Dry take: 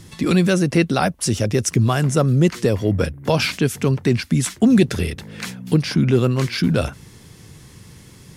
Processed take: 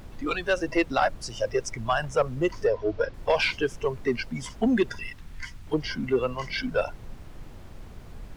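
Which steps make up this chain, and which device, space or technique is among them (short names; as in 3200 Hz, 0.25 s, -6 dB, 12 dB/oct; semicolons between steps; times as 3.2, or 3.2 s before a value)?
spectral noise reduction 18 dB; aircraft cabin announcement (BPF 380–3200 Hz; soft clip -13 dBFS, distortion -19 dB; brown noise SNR 11 dB); 2.67–3.14 LPF 5500 Hz 24 dB/oct; 4.94–5.66 bell 490 Hz -7.5 dB -> -14 dB 1.7 oct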